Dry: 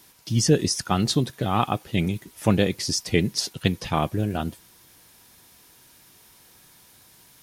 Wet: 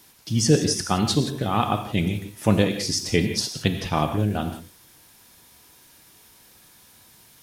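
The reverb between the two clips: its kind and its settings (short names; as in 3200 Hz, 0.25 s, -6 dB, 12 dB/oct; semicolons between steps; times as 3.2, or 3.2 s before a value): non-linear reverb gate 0.2 s flat, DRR 6 dB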